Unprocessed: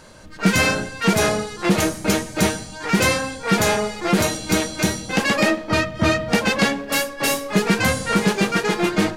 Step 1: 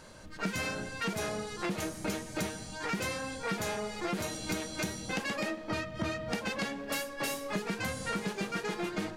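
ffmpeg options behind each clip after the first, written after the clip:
-af "acompressor=threshold=-25dB:ratio=6,volume=-6.5dB"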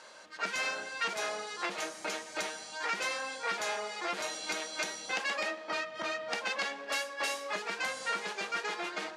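-af "highpass=640,lowpass=7.1k,volume=3dB"

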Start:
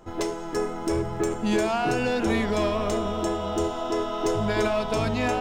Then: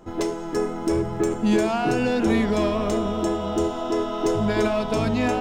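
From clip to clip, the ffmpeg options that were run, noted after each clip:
-af "equalizer=f=240:w=0.87:g=5.5"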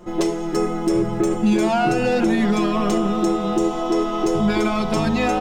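-af "aecho=1:1:5.6:0.88,alimiter=limit=-12.5dB:level=0:latency=1:release=103,volume=2.5dB"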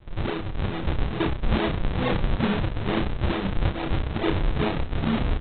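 -filter_complex "[0:a]aresample=8000,acrusher=samples=26:mix=1:aa=0.000001:lfo=1:lforange=41.6:lforate=2.3,aresample=44100,asplit=2[a][b];[b]adelay=31,volume=-5dB[c];[a][c]amix=inputs=2:normalize=0,volume=-5.5dB"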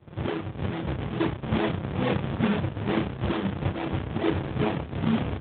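-ar 8000 -c:a libopencore_amrnb -b:a 12200

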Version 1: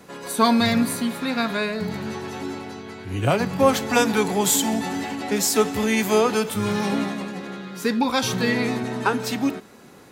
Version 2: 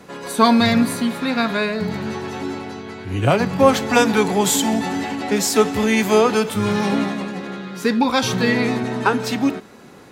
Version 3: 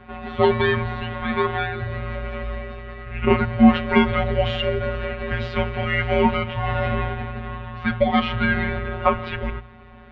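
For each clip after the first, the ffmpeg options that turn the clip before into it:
-af "highshelf=f=8.3k:g=-8,volume=4dB"
-af "afftfilt=real='hypot(re,im)*cos(PI*b)':imag='0':win_size=1024:overlap=0.75,highpass=f=170:t=q:w=0.5412,highpass=f=170:t=q:w=1.307,lowpass=f=3.3k:t=q:w=0.5176,lowpass=f=3.3k:t=q:w=0.7071,lowpass=f=3.3k:t=q:w=1.932,afreqshift=-290,bandreject=f=60:t=h:w=6,bandreject=f=120:t=h:w=6,volume=4dB"

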